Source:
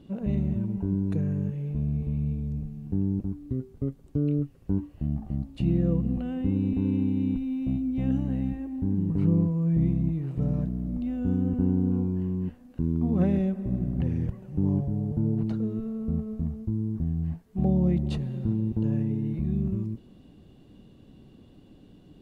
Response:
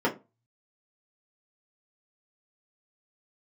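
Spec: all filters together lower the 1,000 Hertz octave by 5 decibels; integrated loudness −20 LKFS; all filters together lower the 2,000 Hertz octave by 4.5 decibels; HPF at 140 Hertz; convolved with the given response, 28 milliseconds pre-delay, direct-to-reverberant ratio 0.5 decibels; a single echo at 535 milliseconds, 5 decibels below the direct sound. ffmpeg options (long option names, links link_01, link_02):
-filter_complex "[0:a]highpass=140,equalizer=frequency=1000:width_type=o:gain=-7,equalizer=frequency=2000:width_type=o:gain=-4,aecho=1:1:535:0.562,asplit=2[link_01][link_02];[1:a]atrim=start_sample=2205,adelay=28[link_03];[link_02][link_03]afir=irnorm=-1:irlink=0,volume=-13.5dB[link_04];[link_01][link_04]amix=inputs=2:normalize=0,volume=3.5dB"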